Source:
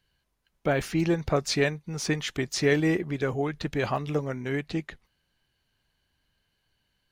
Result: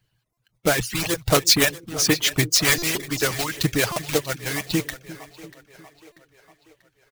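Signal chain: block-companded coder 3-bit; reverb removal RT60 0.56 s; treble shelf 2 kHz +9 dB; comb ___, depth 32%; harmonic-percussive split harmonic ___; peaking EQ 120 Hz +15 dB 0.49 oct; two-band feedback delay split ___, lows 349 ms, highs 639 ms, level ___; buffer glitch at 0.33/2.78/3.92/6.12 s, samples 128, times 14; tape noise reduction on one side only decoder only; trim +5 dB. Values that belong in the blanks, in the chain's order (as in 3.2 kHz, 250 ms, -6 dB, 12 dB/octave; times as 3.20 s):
6.3 ms, -17 dB, 390 Hz, -15.5 dB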